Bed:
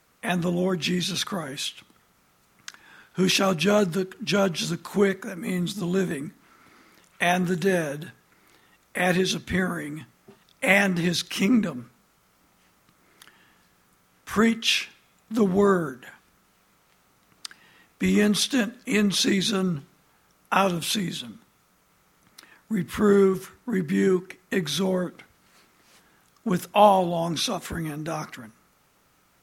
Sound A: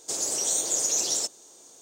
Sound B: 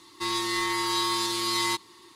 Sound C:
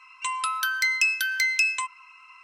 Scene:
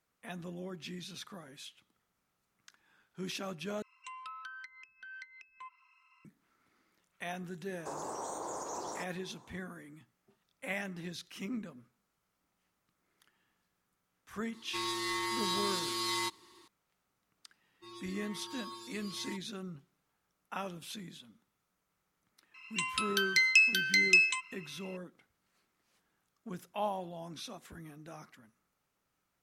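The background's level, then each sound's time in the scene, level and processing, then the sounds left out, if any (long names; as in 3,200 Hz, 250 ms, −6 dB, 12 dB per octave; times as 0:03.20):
bed −18.5 dB
0:03.82: overwrite with C −17 dB + treble cut that deepens with the level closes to 520 Hz, closed at −19.5 dBFS
0:07.77: mix in A −4 dB + drawn EQ curve 620 Hz 0 dB, 990 Hz +13 dB, 2,800 Hz −19 dB
0:14.53: mix in B −7.5 dB
0:17.61: mix in B −15.5 dB + spectral dynamics exaggerated over time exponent 3
0:22.54: mix in C −11.5 dB + meter weighting curve D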